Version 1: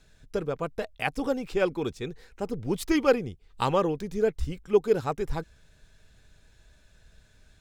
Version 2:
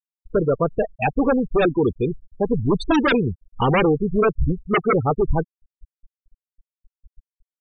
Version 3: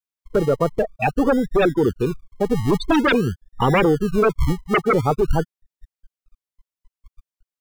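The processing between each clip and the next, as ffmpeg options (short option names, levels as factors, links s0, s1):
-af "aeval=exprs='0.335*sin(PI/2*4.47*val(0)/0.335)':c=same,afftfilt=real='re*gte(hypot(re,im),0.282)':imag='im*gte(hypot(re,im),0.282)':win_size=1024:overlap=0.75,volume=0.708"
-filter_complex "[0:a]aeval=exprs='0.335*(cos(1*acos(clip(val(0)/0.335,-1,1)))-cos(1*PI/2))+0.00376*(cos(6*acos(clip(val(0)/0.335,-1,1)))-cos(6*PI/2))':c=same,acrossover=split=200|770[s0][s1][s2];[s0]acrusher=samples=34:mix=1:aa=0.000001:lfo=1:lforange=20.4:lforate=0.48[s3];[s3][s1][s2]amix=inputs=3:normalize=0,volume=1.12"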